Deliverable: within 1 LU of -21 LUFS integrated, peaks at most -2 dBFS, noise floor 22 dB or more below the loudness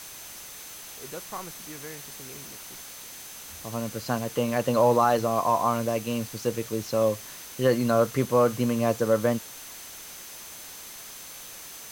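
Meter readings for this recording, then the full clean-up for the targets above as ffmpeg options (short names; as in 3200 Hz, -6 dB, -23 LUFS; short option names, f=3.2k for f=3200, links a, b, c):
steady tone 6200 Hz; tone level -48 dBFS; noise floor -43 dBFS; noise floor target -48 dBFS; loudness -26.0 LUFS; peak -10.0 dBFS; loudness target -21.0 LUFS
-> -af "bandreject=f=6.2k:w=30"
-af "afftdn=nr=6:nf=-43"
-af "volume=5dB"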